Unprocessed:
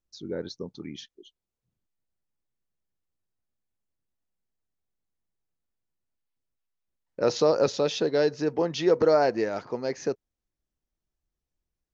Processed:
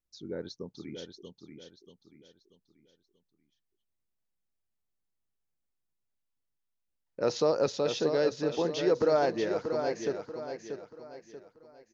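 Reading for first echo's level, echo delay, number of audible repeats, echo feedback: −7.0 dB, 635 ms, 4, 38%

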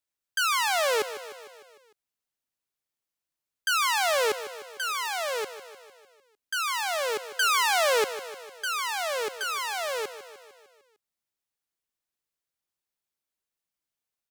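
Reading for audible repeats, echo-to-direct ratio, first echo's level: 5, −11.0 dB, −13.0 dB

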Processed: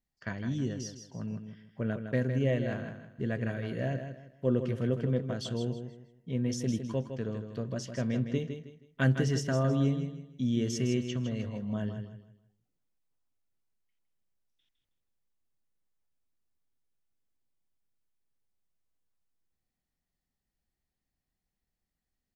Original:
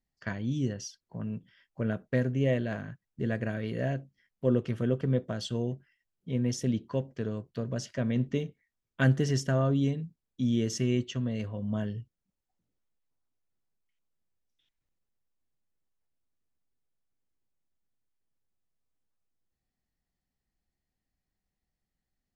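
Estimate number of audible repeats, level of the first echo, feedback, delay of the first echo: 3, −8.0 dB, 30%, 159 ms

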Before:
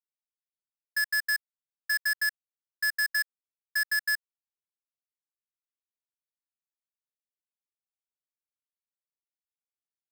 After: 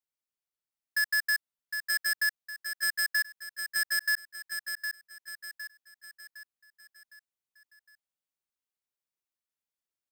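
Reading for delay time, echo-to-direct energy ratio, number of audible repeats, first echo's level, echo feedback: 760 ms, −6.0 dB, 5, −7.0 dB, 46%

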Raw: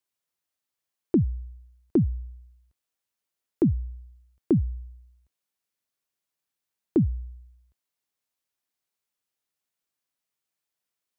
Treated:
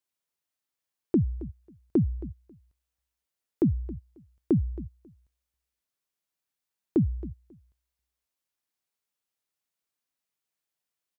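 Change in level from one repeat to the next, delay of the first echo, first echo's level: −15.5 dB, 271 ms, −16.5 dB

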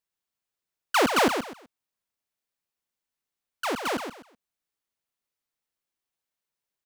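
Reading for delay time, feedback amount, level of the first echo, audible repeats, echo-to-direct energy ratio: 126 ms, 25%, −7.5 dB, 3, −7.0 dB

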